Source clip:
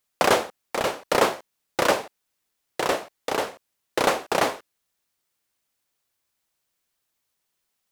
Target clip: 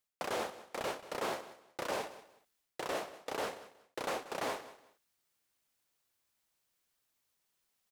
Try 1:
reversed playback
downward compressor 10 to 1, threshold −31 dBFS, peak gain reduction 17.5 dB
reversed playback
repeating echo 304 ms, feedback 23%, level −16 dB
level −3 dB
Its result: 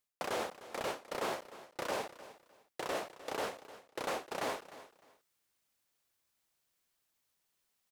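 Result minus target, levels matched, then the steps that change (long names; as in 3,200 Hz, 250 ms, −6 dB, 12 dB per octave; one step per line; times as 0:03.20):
echo 119 ms late
change: repeating echo 185 ms, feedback 23%, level −16 dB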